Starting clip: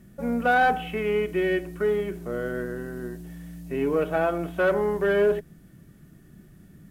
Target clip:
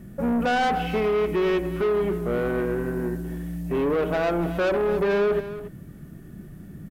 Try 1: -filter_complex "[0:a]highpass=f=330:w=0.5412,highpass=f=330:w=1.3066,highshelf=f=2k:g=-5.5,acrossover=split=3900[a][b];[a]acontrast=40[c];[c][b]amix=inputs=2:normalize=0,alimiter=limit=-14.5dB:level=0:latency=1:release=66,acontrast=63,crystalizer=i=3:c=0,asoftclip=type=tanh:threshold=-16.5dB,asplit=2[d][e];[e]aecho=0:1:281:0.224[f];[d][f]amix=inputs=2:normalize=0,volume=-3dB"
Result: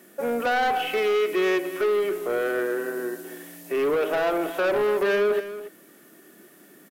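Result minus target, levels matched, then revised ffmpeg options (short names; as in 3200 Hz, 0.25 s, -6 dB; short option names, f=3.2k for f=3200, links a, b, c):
250 Hz band -5.0 dB; 4000 Hz band +2.5 dB
-filter_complex "[0:a]highshelf=f=2k:g=-14,acrossover=split=3900[a][b];[a]acontrast=40[c];[c][b]amix=inputs=2:normalize=0,alimiter=limit=-14.5dB:level=0:latency=1:release=66,acontrast=63,crystalizer=i=3:c=0,asoftclip=type=tanh:threshold=-16.5dB,asplit=2[d][e];[e]aecho=0:1:281:0.224[f];[d][f]amix=inputs=2:normalize=0,volume=-3dB"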